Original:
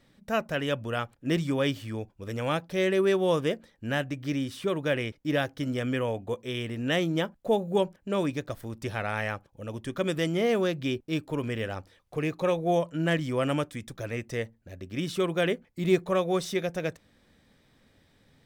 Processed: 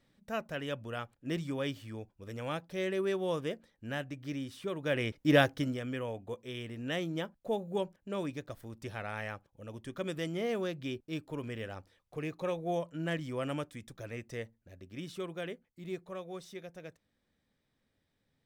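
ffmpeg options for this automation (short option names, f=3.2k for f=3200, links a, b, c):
-af "volume=3.5dB,afade=t=in:st=4.79:d=0.61:silence=0.251189,afade=t=out:st=5.4:d=0.39:silence=0.251189,afade=t=out:st=14.43:d=1.36:silence=0.398107"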